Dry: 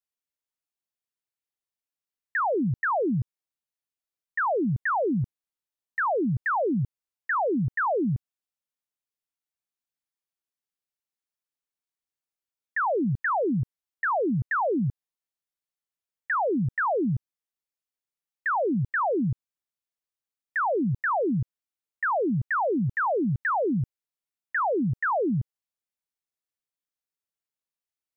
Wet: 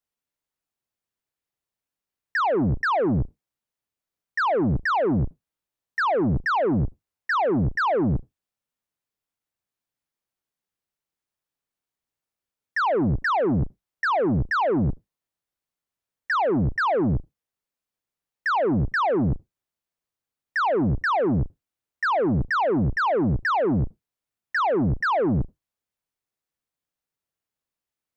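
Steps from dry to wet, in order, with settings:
sub-octave generator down 1 octave, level −3 dB
high-shelf EQ 2,000 Hz −6.5 dB
soft clipping −26 dBFS, distortion −12 dB
level +7.5 dB

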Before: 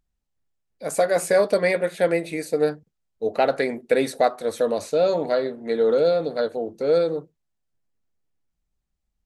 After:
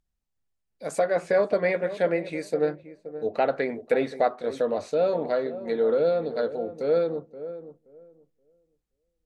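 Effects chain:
treble cut that deepens with the level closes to 2,900 Hz, closed at −18.5 dBFS
feedback echo with a low-pass in the loop 525 ms, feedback 21%, low-pass 880 Hz, level −12 dB
level −3.5 dB

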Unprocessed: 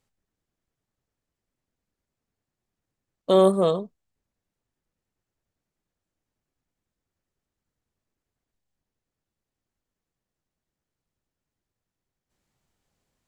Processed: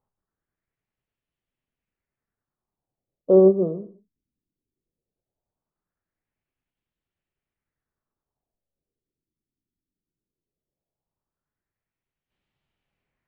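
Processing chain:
auto-filter low-pass sine 0.18 Hz 280–3,000 Hz
reverb whose tail is shaped and stops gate 230 ms falling, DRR 10.5 dB
expander for the loud parts 1.5 to 1, over −22 dBFS

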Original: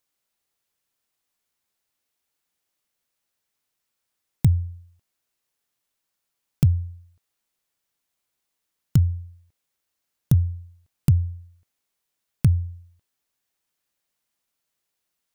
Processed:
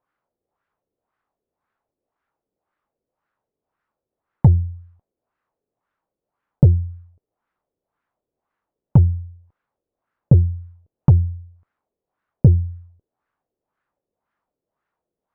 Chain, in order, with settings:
harmonic generator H 8 −28 dB, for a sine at −6 dBFS
auto-filter low-pass sine 1.9 Hz 430–1,500 Hz
level +5.5 dB

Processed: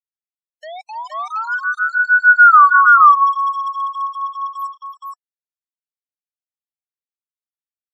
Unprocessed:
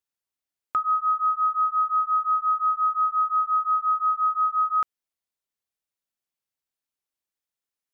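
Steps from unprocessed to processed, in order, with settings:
turntable start at the beginning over 1.82 s
source passing by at 0:02.55, 50 m/s, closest 4.4 metres
high-pass filter 1,200 Hz 12 dB per octave
reverb reduction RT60 0.82 s
bit reduction 10 bits
gate on every frequency bin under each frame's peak −20 dB strong
multi-tap delay 303/469 ms −16.5/−3.5 dB
boost into a limiter +27 dB
level −1 dB

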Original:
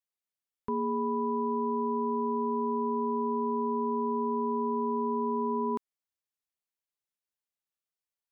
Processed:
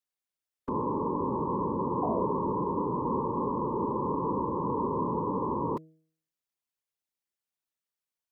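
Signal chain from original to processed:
sound drawn into the spectrogram fall, 0:02.02–0:02.33, 360–780 Hz −33 dBFS
random phases in short frames
hum removal 159 Hz, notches 4

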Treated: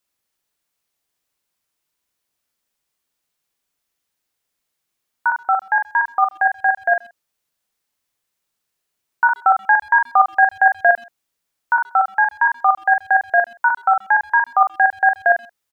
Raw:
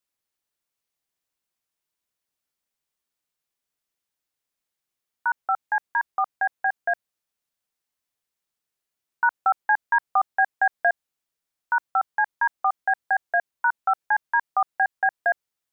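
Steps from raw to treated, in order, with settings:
double-tracking delay 43 ms −5.5 dB
far-end echo of a speakerphone 130 ms, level −25 dB
level +6.5 dB

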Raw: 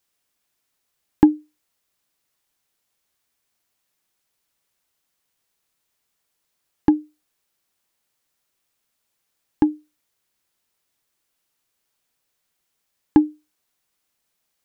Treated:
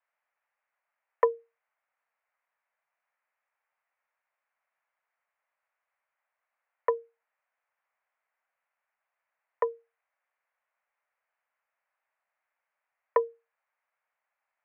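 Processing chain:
single-sideband voice off tune +160 Hz 420–2,100 Hz

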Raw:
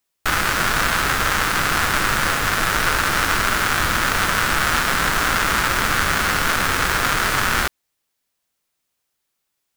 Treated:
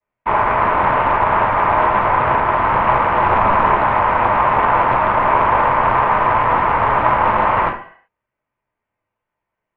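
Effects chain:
0:03.24–0:03.75: low-shelf EQ 480 Hz +8.5 dB
convolution reverb RT60 0.45 s, pre-delay 3 ms, DRR −12 dB
single-sideband voice off tune −400 Hz 350–3,200 Hz
highs frequency-modulated by the lows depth 0.38 ms
level −16.5 dB

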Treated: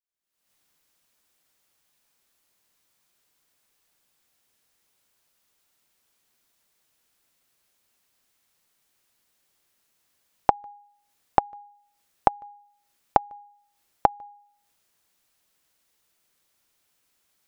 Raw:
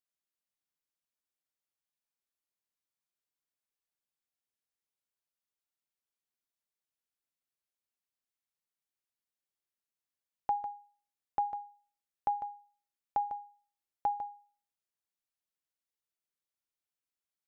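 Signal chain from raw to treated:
camcorder AGC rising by 58 dB per second
level −8.5 dB

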